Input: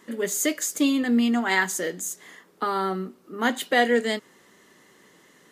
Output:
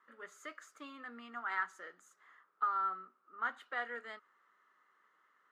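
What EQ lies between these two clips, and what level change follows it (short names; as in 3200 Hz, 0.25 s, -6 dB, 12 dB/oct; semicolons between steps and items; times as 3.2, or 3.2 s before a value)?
band-pass 1300 Hz, Q 6.5; -2.5 dB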